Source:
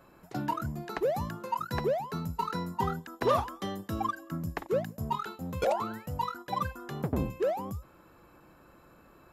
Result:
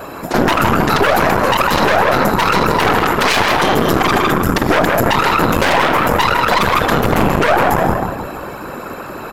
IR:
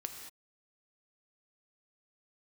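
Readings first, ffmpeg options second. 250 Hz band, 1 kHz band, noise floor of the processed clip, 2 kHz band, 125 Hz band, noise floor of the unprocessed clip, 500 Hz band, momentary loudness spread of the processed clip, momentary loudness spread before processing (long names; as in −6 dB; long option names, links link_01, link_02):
+19.5 dB, +20.0 dB, −29 dBFS, +28.5 dB, +16.0 dB, −58 dBFS, +17.0 dB, 11 LU, 7 LU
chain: -filter_complex "[0:a]equalizer=frequency=400:width=0.32:gain=2.5,aeval=exprs='0.0562*(abs(mod(val(0)/0.0562+3,4)-2)-1)':channel_layout=same,asplit=2[link_01][link_02];[link_02]adelay=158,lowpass=frequency=2100:poles=1,volume=-5dB,asplit=2[link_03][link_04];[link_04]adelay=158,lowpass=frequency=2100:poles=1,volume=0.49,asplit=2[link_05][link_06];[link_06]adelay=158,lowpass=frequency=2100:poles=1,volume=0.49,asplit=2[link_07][link_08];[link_08]adelay=158,lowpass=frequency=2100:poles=1,volume=0.49,asplit=2[link_09][link_10];[link_10]adelay=158,lowpass=frequency=2100:poles=1,volume=0.49,asplit=2[link_11][link_12];[link_12]adelay=158,lowpass=frequency=2100:poles=1,volume=0.49[link_13];[link_03][link_05][link_07][link_09][link_11][link_13]amix=inputs=6:normalize=0[link_14];[link_01][link_14]amix=inputs=2:normalize=0,asoftclip=type=tanh:threshold=-23.5dB,asplit=2[link_15][link_16];[1:a]atrim=start_sample=2205[link_17];[link_16][link_17]afir=irnorm=-1:irlink=0,volume=2.5dB[link_18];[link_15][link_18]amix=inputs=2:normalize=0,afftfilt=real='hypot(re,im)*cos(2*PI*random(0))':imag='hypot(re,im)*sin(2*PI*random(1))':win_size=512:overlap=0.75,aeval=exprs='0.112*(cos(1*acos(clip(val(0)/0.112,-1,1)))-cos(1*PI/2))+0.0398*(cos(4*acos(clip(val(0)/0.112,-1,1)))-cos(4*PI/2))':channel_layout=same,lowshelf=frequency=240:gain=-8.5,alimiter=level_in=29.5dB:limit=-1dB:release=50:level=0:latency=1,volume=-1dB"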